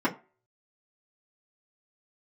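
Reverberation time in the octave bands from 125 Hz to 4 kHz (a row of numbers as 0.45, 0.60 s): 0.25, 0.25, 0.35, 0.35, 0.30, 0.20 s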